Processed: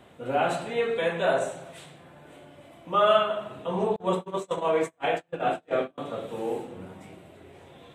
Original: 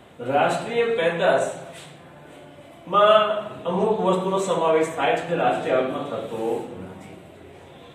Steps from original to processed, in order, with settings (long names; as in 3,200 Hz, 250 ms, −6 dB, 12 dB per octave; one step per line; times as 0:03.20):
0:03.96–0:05.98: noise gate −21 dBFS, range −35 dB
level −5 dB